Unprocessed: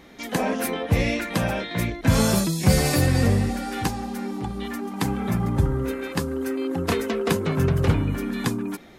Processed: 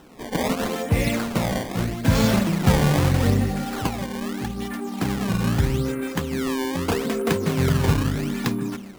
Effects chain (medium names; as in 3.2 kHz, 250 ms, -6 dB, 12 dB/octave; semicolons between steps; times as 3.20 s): on a send at -15.5 dB: reverberation RT60 0.60 s, pre-delay 148 ms; on the sum: decimation with a swept rate 19×, swing 160% 0.79 Hz